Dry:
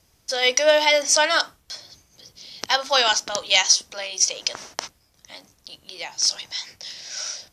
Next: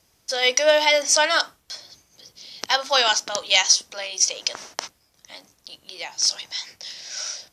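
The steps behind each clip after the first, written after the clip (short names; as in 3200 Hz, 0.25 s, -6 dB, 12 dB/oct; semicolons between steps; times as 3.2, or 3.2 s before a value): low shelf 130 Hz -8.5 dB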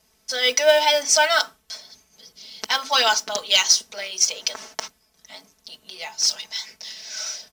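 modulation noise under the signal 25 dB; comb 4.6 ms, depth 81%; gain -2 dB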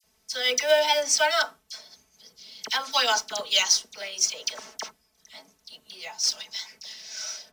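dispersion lows, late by 40 ms, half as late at 2000 Hz; gain -4.5 dB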